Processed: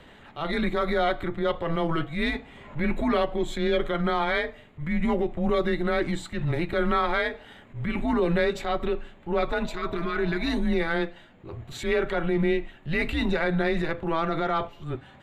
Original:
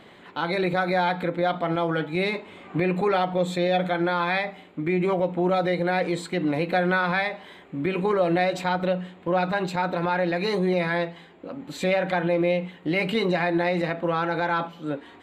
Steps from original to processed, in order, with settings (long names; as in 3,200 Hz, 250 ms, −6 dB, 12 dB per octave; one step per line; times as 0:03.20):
transient designer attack −8 dB, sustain −3 dB
frequency shifter −160 Hz
healed spectral selection 0:09.70–0:10.48, 450–1,000 Hz before